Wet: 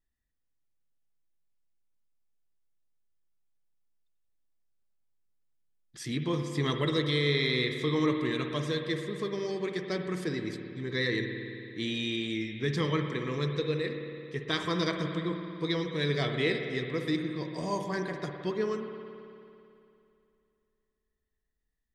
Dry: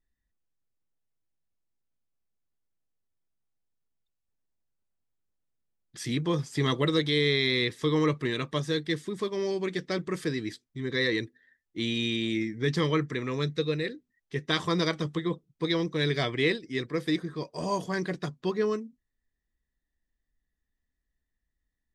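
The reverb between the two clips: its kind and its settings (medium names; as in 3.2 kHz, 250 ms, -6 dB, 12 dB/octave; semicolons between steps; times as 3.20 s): spring tank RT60 2.7 s, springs 55 ms, chirp 70 ms, DRR 4.5 dB; trim -3.5 dB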